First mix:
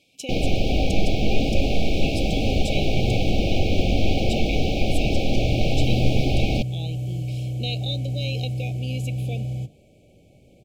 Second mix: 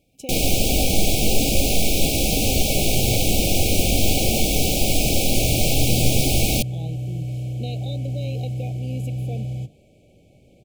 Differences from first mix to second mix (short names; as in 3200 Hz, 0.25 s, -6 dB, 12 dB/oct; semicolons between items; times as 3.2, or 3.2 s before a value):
speech: remove weighting filter D; first sound: remove air absorption 260 m